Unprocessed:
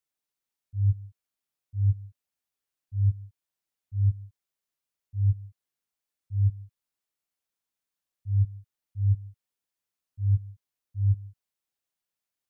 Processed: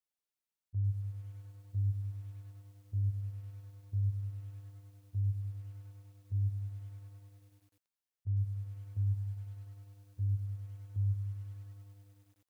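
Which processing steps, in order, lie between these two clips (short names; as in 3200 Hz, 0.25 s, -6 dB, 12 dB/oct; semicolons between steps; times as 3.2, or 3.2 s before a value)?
gate -43 dBFS, range -7 dB; compressor 20:1, threshold -30 dBFS, peak gain reduction 13 dB; lo-fi delay 0.1 s, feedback 80%, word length 10-bit, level -13 dB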